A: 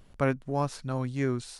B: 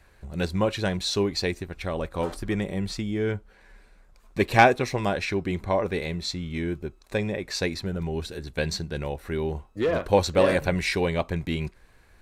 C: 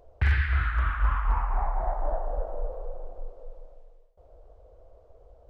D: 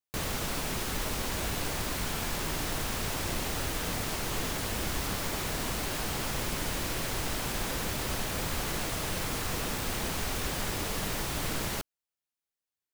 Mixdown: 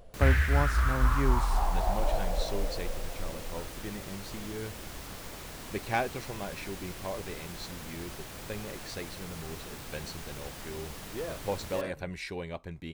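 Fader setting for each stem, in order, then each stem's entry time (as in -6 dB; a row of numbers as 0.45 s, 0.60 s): -2.5 dB, -13.0 dB, -0.5 dB, -10.5 dB; 0.00 s, 1.35 s, 0.00 s, 0.00 s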